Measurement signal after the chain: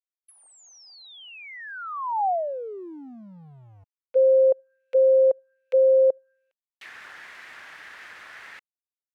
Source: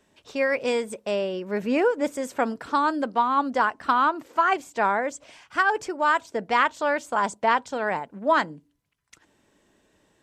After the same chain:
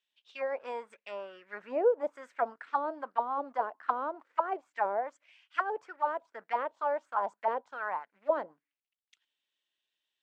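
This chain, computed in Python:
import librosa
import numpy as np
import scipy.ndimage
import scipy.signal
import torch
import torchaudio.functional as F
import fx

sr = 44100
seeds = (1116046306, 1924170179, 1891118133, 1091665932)

y = fx.law_mismatch(x, sr, coded='A')
y = fx.auto_wah(y, sr, base_hz=530.0, top_hz=3300.0, q=3.5, full_db=-18.0, direction='down')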